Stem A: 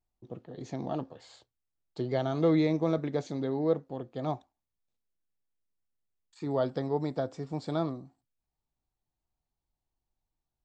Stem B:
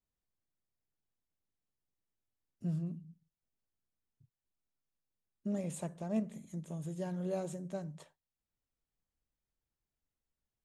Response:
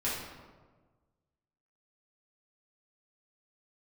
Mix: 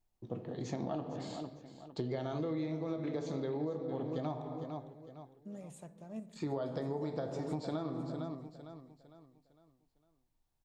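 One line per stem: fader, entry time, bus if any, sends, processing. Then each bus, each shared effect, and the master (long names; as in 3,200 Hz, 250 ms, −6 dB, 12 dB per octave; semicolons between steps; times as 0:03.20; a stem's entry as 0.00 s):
+0.5 dB, 0.00 s, send −10 dB, echo send −11.5 dB, brickwall limiter −20 dBFS, peak gain reduction 5 dB
−11.0 dB, 0.00 s, send −21.5 dB, echo send −21 dB, no processing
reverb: on, RT60 1.4 s, pre-delay 3 ms
echo: repeating echo 455 ms, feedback 39%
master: downward compressor 12 to 1, threshold −33 dBFS, peak gain reduction 15 dB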